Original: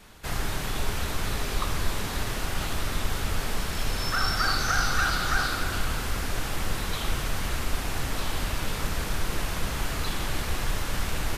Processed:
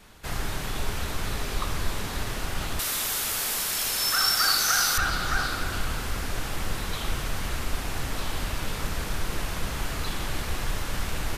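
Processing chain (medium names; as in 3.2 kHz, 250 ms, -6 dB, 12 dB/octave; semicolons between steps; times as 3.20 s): 2.79–4.98 s: RIAA curve recording; trim -1 dB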